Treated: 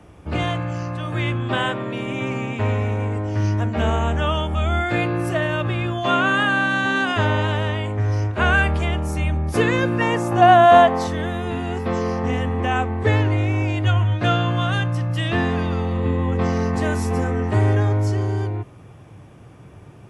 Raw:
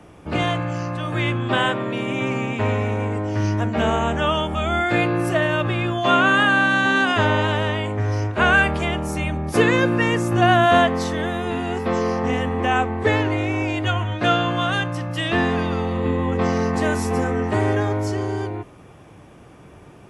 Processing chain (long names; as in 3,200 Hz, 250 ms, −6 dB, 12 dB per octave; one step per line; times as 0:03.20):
parametric band 73 Hz +9.5 dB 0.98 octaves, from 0:10.01 780 Hz, from 0:11.07 110 Hz
level −2.5 dB